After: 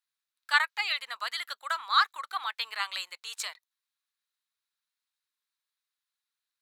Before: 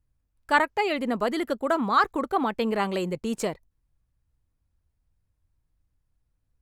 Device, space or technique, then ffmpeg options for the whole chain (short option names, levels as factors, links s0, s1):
headphones lying on a table: -af "highpass=f=1200:w=0.5412,highpass=f=1200:w=1.3066,equalizer=f=3900:t=o:w=0.43:g=10"